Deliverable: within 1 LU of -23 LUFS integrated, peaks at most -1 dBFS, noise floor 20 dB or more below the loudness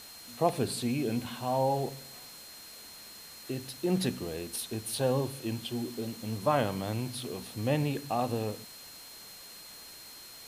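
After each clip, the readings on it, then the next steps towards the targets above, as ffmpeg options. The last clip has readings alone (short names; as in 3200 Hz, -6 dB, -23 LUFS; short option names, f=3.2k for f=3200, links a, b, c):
steady tone 4200 Hz; tone level -50 dBFS; noise floor -49 dBFS; noise floor target -53 dBFS; loudness -32.5 LUFS; peak -13.0 dBFS; loudness target -23.0 LUFS
-> -af "bandreject=f=4.2k:w=30"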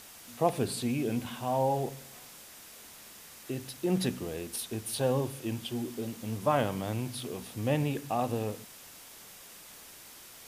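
steady tone none; noise floor -51 dBFS; noise floor target -53 dBFS
-> -af "afftdn=nr=6:nf=-51"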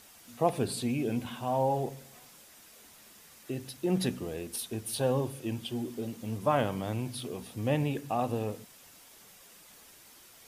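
noise floor -56 dBFS; loudness -32.5 LUFS; peak -13.0 dBFS; loudness target -23.0 LUFS
-> -af "volume=9.5dB"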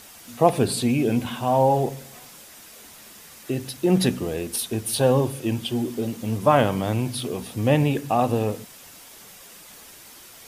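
loudness -23.0 LUFS; peak -3.5 dBFS; noise floor -46 dBFS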